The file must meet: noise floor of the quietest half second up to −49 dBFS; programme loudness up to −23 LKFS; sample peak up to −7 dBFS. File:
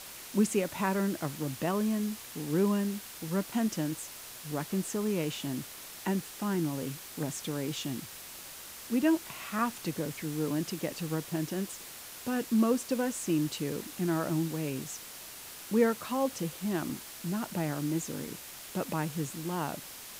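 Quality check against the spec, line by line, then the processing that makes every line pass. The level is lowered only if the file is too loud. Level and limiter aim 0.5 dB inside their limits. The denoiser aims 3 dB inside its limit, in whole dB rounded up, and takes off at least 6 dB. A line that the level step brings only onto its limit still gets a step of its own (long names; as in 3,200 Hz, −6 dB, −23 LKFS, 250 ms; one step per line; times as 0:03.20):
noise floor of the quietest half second −46 dBFS: out of spec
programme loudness −32.5 LKFS: in spec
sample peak −13.5 dBFS: in spec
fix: broadband denoise 6 dB, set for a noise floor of −46 dBFS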